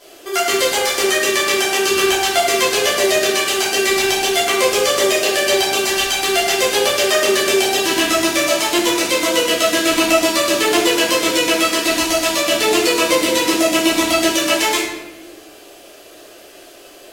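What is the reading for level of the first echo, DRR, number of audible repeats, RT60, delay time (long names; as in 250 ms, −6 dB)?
no echo audible, −10.5 dB, no echo audible, 1.1 s, no echo audible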